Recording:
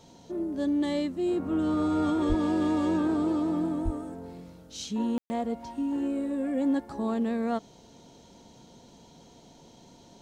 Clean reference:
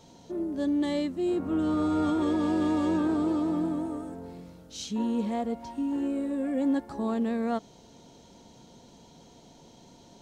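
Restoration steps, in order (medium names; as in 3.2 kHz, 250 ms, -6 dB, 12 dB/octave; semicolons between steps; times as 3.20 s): 2.28–2.40 s: high-pass 140 Hz 24 dB/octave; 3.84–3.96 s: high-pass 140 Hz 24 dB/octave; room tone fill 5.18–5.30 s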